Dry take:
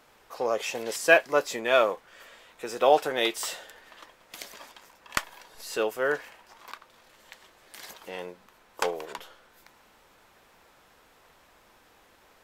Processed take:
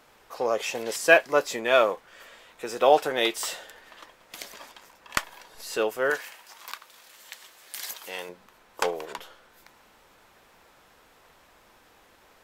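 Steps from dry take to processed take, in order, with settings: 6.1–8.29 tilt +3 dB/oct; gain +1.5 dB

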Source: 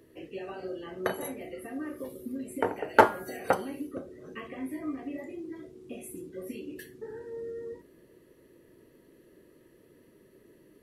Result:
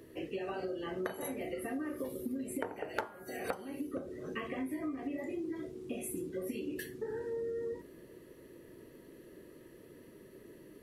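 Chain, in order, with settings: compressor 16:1, threshold -38 dBFS, peak gain reduction 27 dB; gain +4 dB

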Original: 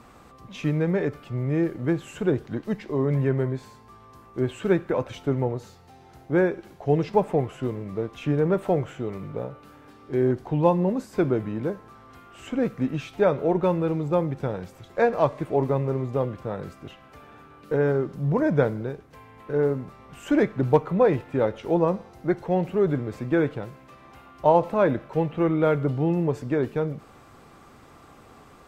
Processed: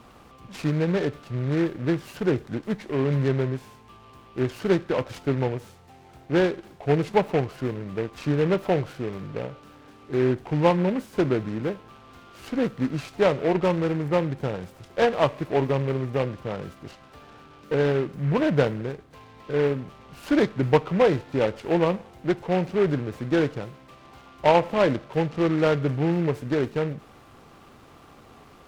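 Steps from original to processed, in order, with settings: noise-modulated delay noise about 1500 Hz, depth 0.056 ms

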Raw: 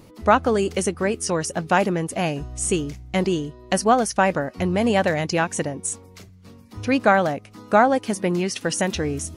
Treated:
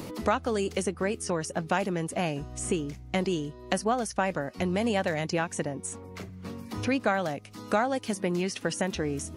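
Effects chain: three-band squash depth 70%; gain -7.5 dB

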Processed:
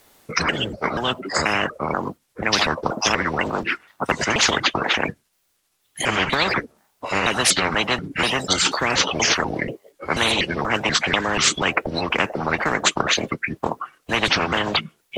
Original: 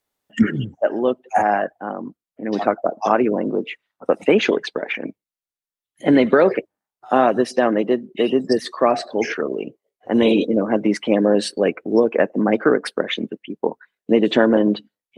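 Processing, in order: trilling pitch shifter -5 st, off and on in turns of 0.242 s; spectral compressor 10:1

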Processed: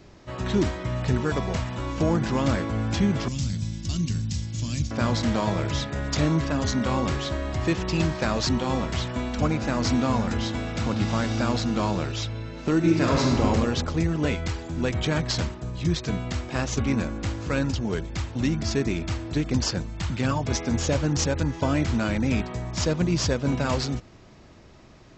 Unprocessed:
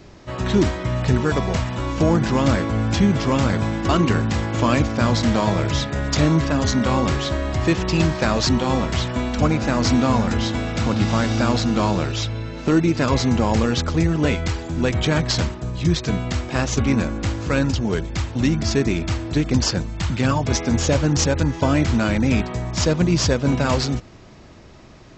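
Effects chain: 3.28–4.91 EQ curve 170 Hz 0 dB, 420 Hz -20 dB, 1200 Hz -23 dB, 5500 Hz +6 dB, 8300 Hz +3 dB; 12.76–13.45 reverb throw, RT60 1.4 s, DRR -1 dB; gain -5.5 dB

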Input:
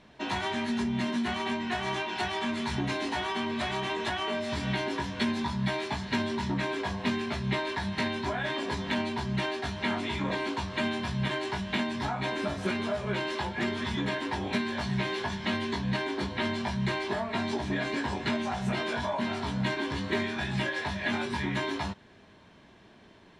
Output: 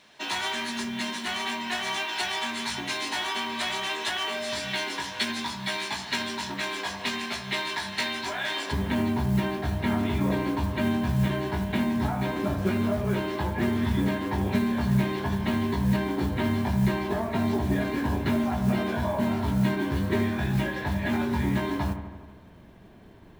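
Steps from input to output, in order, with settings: tilt +3.5 dB/oct, from 8.71 s -2.5 dB/oct; modulation noise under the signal 25 dB; dark delay 81 ms, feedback 65%, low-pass 2100 Hz, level -9 dB

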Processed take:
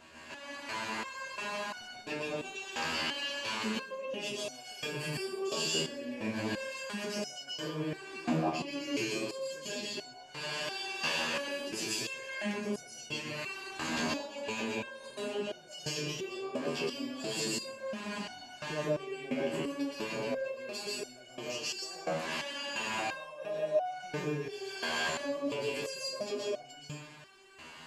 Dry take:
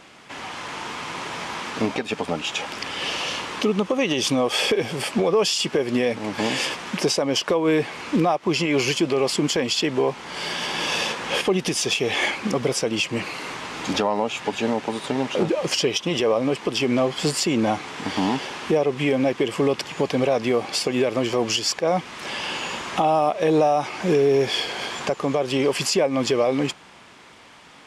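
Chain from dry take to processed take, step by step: ripple EQ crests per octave 1.4, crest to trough 7 dB; compressor, threshold -26 dBFS, peak gain reduction 12 dB; reverb RT60 0.75 s, pre-delay 0.112 s, DRR -4.5 dB; stepped resonator 2.9 Hz 80–730 Hz

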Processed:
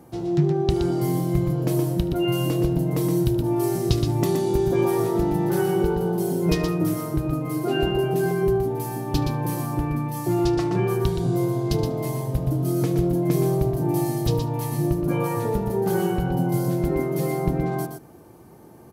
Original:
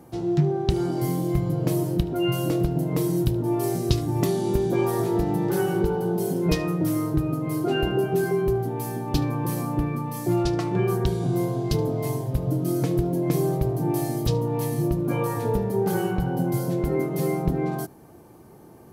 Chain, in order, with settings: echo 0.121 s -6 dB

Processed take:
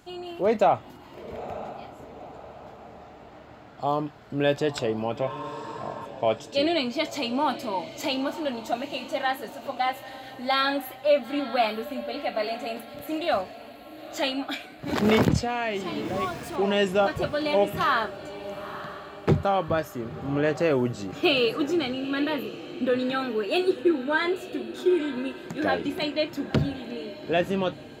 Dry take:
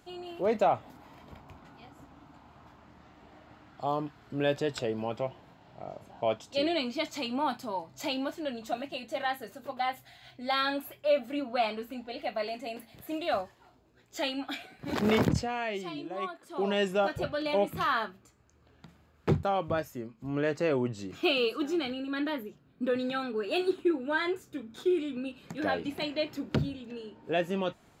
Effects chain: 16.05–16.56 zero-crossing step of -44 dBFS; diffused feedback echo 0.926 s, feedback 49%, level -13.5 dB; 5.27–6.03 spectral repair 830–1800 Hz before; gain +5 dB

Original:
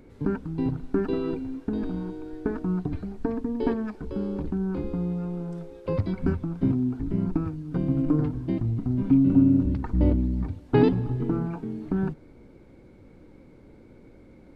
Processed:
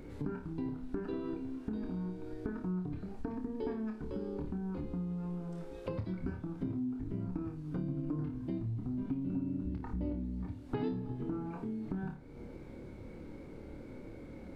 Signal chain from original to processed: on a send: flutter echo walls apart 4.7 m, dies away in 0.3 s; on the sum: compressor 3:1, threshold -42 dBFS, peak gain reduction 21 dB; gain +2 dB

